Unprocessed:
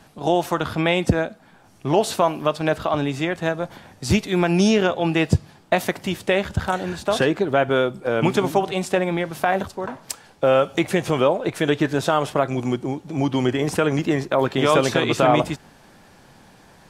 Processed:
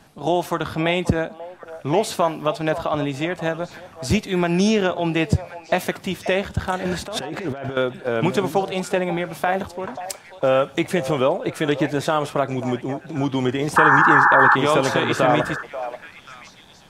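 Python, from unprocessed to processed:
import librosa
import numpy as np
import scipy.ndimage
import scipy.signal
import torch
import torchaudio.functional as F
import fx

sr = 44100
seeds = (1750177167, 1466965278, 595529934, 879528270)

y = fx.over_compress(x, sr, threshold_db=-27.0, ratio=-1.0, at=(6.85, 7.77))
y = fx.spec_paint(y, sr, seeds[0], shape='noise', start_s=13.76, length_s=0.8, low_hz=800.0, high_hz=1800.0, level_db=-13.0)
y = fx.echo_stepped(y, sr, ms=536, hz=700.0, octaves=1.4, feedback_pct=70, wet_db=-10)
y = y * librosa.db_to_amplitude(-1.0)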